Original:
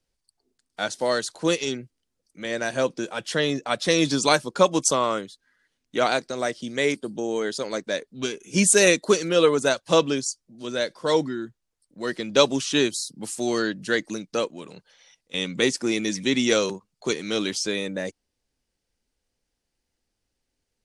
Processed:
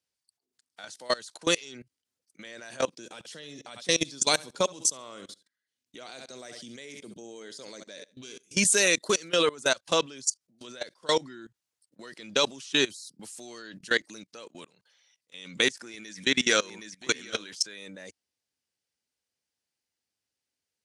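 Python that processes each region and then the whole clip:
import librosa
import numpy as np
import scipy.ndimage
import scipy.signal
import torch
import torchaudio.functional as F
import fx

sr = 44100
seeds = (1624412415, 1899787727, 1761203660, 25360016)

y = fx.chain(x, sr, fx.peak_eq(hz=1300.0, db=-7.0, octaves=2.1),
    fx.echo_feedback(ms=68, feedback_pct=27, wet_db=-14.5), at=(2.95, 8.55))
y = fx.chain(y, sr, fx.peak_eq(hz=1600.0, db=8.0, octaves=0.41),
    fx.echo_single(ms=768, db=-11.5), at=(15.65, 17.78))
y = scipy.signal.sosfilt(scipy.signal.butter(4, 76.0, 'highpass', fs=sr, output='sos'), y)
y = fx.tilt_shelf(y, sr, db=-5.0, hz=870.0)
y = fx.level_steps(y, sr, step_db=22)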